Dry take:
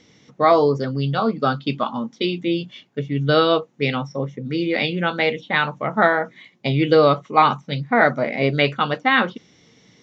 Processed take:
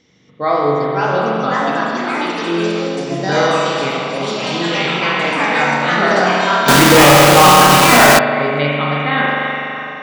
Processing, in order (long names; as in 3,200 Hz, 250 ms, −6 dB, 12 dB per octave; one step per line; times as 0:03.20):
0:01.65–0:03.07: elliptic band-pass filter 180–5,100 Hz
on a send: echo through a band-pass that steps 319 ms, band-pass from 2,600 Hz, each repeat −0.7 octaves, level −8.5 dB
on the sum: spring reverb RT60 2.9 s, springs 41 ms, chirp 80 ms, DRR −4.5 dB
delay with pitch and tempo change per echo 622 ms, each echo +4 semitones, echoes 3
0:06.68–0:08.19: log-companded quantiser 2 bits
level −3.5 dB